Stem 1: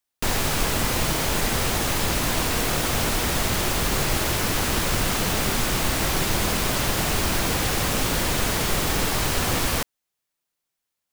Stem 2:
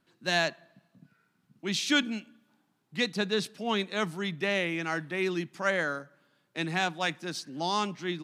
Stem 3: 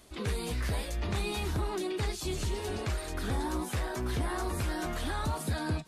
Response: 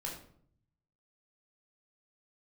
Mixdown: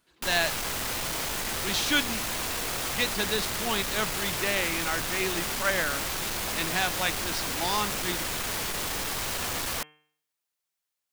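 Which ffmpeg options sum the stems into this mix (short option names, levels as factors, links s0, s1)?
-filter_complex "[0:a]aeval=exprs='0.376*sin(PI/2*3.16*val(0)/0.376)':c=same,bandreject=f=151.5:t=h:w=4,bandreject=f=303:t=h:w=4,bandreject=f=454.5:t=h:w=4,bandreject=f=606:t=h:w=4,bandreject=f=757.5:t=h:w=4,bandreject=f=909:t=h:w=4,bandreject=f=1060.5:t=h:w=4,bandreject=f=1212:t=h:w=4,bandreject=f=1363.5:t=h:w=4,bandreject=f=1515:t=h:w=4,bandreject=f=1666.5:t=h:w=4,bandreject=f=1818:t=h:w=4,bandreject=f=1969.5:t=h:w=4,bandreject=f=2121:t=h:w=4,bandreject=f=2272.5:t=h:w=4,bandreject=f=2424:t=h:w=4,bandreject=f=2575.5:t=h:w=4,bandreject=f=2727:t=h:w=4,bandreject=f=2878.5:t=h:w=4,bandreject=f=3030:t=h:w=4,bandreject=f=3181.5:t=h:w=4,volume=0.15[s0];[1:a]volume=1.26[s1];[2:a]asoftclip=type=tanh:threshold=0.0158,alimiter=level_in=7.94:limit=0.0631:level=0:latency=1,volume=0.126,volume=0.168[s2];[s0][s1][s2]amix=inputs=3:normalize=0,lowshelf=f=460:g=-8"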